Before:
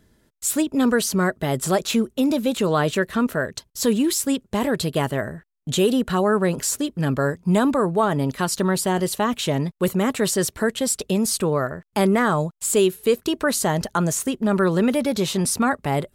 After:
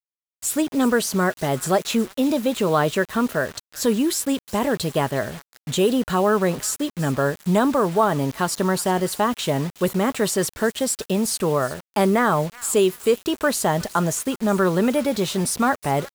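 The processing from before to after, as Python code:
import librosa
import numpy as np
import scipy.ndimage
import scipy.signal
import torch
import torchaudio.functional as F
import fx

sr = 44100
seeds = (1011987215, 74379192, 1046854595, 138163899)

y = fx.dynamic_eq(x, sr, hz=830.0, q=0.78, threshold_db=-32.0, ratio=4.0, max_db=4)
y = fx.echo_wet_highpass(y, sr, ms=365, feedback_pct=41, hz=1500.0, wet_db=-16.5)
y = fx.quant_dither(y, sr, seeds[0], bits=6, dither='none')
y = y * librosa.db_to_amplitude(-1.5)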